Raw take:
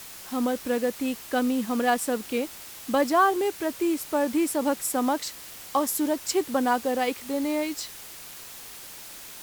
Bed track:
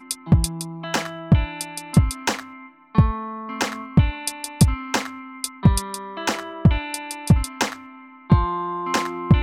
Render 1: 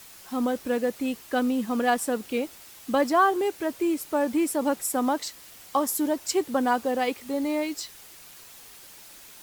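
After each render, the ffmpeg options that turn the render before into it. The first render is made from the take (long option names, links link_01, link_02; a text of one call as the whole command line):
ffmpeg -i in.wav -af "afftdn=noise_reduction=6:noise_floor=-43" out.wav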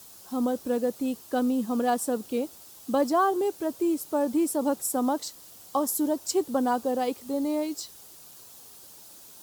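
ffmpeg -i in.wav -af "highpass=64,equalizer=frequency=2100:width_type=o:width=1.2:gain=-12.5" out.wav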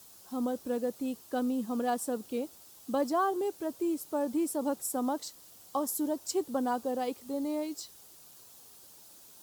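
ffmpeg -i in.wav -af "volume=-5.5dB" out.wav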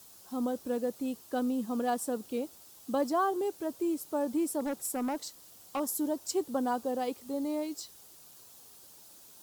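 ffmpeg -i in.wav -filter_complex "[0:a]asettb=1/sr,asplit=3[link_01][link_02][link_03];[link_01]atrim=end=4.604[link_04];[link_02]atrim=start=4.6:end=5.8,asetpts=PTS-STARTPTS,afade=type=in:duration=0.004:curve=qsin,afade=type=out:start_time=1.196:duration=0.004:curve=qsin,volume=28.5dB,asoftclip=hard,volume=-28.5dB[link_05];[link_03]atrim=start=5.796[link_06];[link_04][link_05]acrossfade=duration=0.004:curve1=hsin:curve2=qsin[link_07];[link_07][link_06]acrossfade=duration=0.004:curve1=qsin:curve2=hsin" out.wav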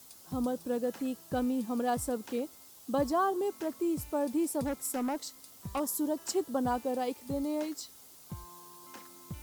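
ffmpeg -i in.wav -i bed.wav -filter_complex "[1:a]volume=-28dB[link_01];[0:a][link_01]amix=inputs=2:normalize=0" out.wav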